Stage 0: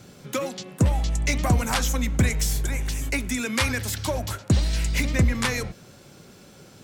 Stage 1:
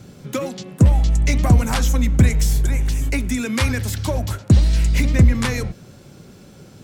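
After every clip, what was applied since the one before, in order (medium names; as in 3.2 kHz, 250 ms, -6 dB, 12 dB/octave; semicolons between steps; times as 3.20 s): bass shelf 370 Hz +8.5 dB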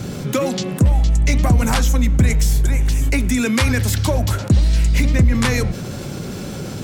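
level flattener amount 50%; trim -2.5 dB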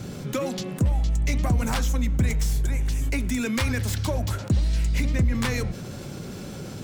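tracing distortion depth 0.037 ms; trim -8 dB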